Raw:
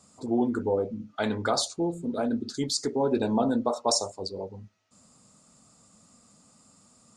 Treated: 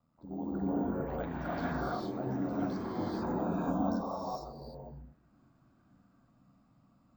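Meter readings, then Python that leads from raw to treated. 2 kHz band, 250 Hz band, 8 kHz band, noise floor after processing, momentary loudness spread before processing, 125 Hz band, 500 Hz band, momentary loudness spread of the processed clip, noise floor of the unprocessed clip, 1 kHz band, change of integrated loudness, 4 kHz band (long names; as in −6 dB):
−6.0 dB, −5.0 dB, below −25 dB, −68 dBFS, 9 LU, −1.5 dB, −9.5 dB, 14 LU, −60 dBFS, −5.0 dB, −7.0 dB, −21.5 dB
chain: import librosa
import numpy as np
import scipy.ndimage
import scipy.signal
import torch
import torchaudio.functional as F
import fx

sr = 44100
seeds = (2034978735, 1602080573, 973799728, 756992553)

y = fx.peak_eq(x, sr, hz=410.0, db=-11.0, octaves=0.63)
y = fx.echo_pitch(y, sr, ms=161, semitones=4, count=3, db_per_echo=-6.0)
y = y + 10.0 ** (-23.5 / 20.0) * np.pad(y, (int(239 * sr / 1000.0), 0))[:len(y)]
y = y * np.sin(2.0 * np.pi * 41.0 * np.arange(len(y)) / sr)
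y = fx.spacing_loss(y, sr, db_at_10k=43)
y = fx.rev_gated(y, sr, seeds[0], gate_ms=480, shape='rising', drr_db=-7.5)
y = np.repeat(scipy.signal.resample_poly(y, 1, 2), 2)[:len(y)]
y = y * 10.0 ** (-7.0 / 20.0)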